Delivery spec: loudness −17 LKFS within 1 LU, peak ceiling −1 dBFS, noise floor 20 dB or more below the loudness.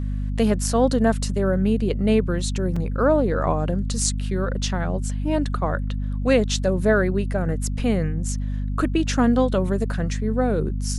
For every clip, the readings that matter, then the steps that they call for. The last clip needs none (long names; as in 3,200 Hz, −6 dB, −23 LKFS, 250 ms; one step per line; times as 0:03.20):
number of dropouts 1; longest dropout 4.2 ms; mains hum 50 Hz; hum harmonics up to 250 Hz; level of the hum −23 dBFS; integrated loudness −22.5 LKFS; sample peak −4.0 dBFS; target loudness −17.0 LKFS
→ repair the gap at 0:02.76, 4.2 ms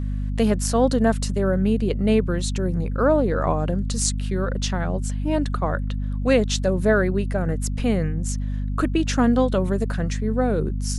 number of dropouts 0; mains hum 50 Hz; hum harmonics up to 250 Hz; level of the hum −23 dBFS
→ mains-hum notches 50/100/150/200/250 Hz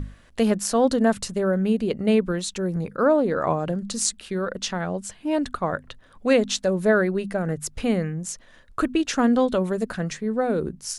mains hum none found; integrated loudness −24.0 LKFS; sample peak −4.5 dBFS; target loudness −17.0 LKFS
→ level +7 dB
brickwall limiter −1 dBFS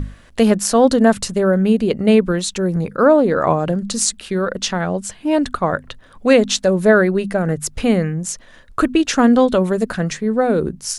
integrated loudness −17.0 LKFS; sample peak −1.0 dBFS; background noise floor −45 dBFS